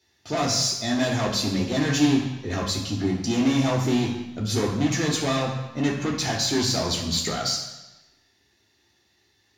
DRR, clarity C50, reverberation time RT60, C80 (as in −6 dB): −4.0 dB, 4.5 dB, 1.0 s, 6.5 dB